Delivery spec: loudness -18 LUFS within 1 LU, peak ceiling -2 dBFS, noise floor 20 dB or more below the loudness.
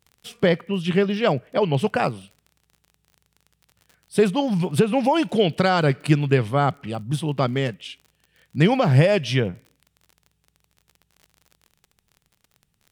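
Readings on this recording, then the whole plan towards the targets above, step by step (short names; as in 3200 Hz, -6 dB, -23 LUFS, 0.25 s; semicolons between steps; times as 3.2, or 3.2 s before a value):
ticks 39/s; loudness -21.5 LUFS; peak -3.5 dBFS; loudness target -18.0 LUFS
-> de-click; gain +3.5 dB; limiter -2 dBFS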